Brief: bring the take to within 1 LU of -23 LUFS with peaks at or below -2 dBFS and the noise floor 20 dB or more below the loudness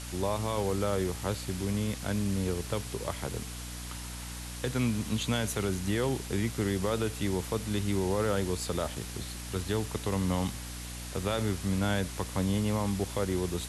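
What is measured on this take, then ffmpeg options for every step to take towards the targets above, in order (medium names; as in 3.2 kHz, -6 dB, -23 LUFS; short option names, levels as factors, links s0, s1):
hum 60 Hz; highest harmonic 300 Hz; hum level -39 dBFS; noise floor -40 dBFS; noise floor target -52 dBFS; loudness -32.0 LUFS; peak level -17.5 dBFS; loudness target -23.0 LUFS
-> -af "bandreject=f=60:t=h:w=4,bandreject=f=120:t=h:w=4,bandreject=f=180:t=h:w=4,bandreject=f=240:t=h:w=4,bandreject=f=300:t=h:w=4"
-af "afftdn=nr=12:nf=-40"
-af "volume=2.82"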